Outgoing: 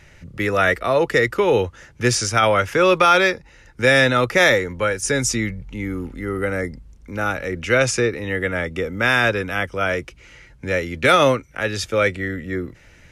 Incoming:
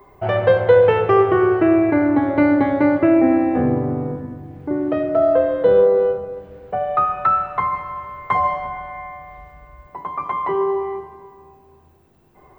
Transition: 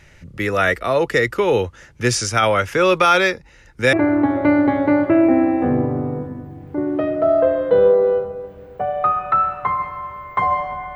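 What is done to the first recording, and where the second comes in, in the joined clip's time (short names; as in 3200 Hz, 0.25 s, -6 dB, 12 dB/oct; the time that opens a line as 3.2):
outgoing
3.93 switch to incoming from 1.86 s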